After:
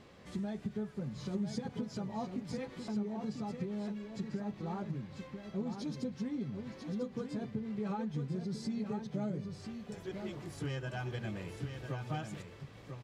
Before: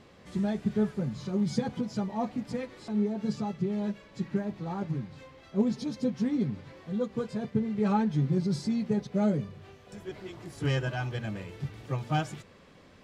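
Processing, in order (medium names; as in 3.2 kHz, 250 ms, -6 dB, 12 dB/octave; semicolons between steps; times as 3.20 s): compression 4:1, threshold -34 dBFS, peak gain reduction 12 dB; on a send: delay 995 ms -7 dB; on the sum: trim -2 dB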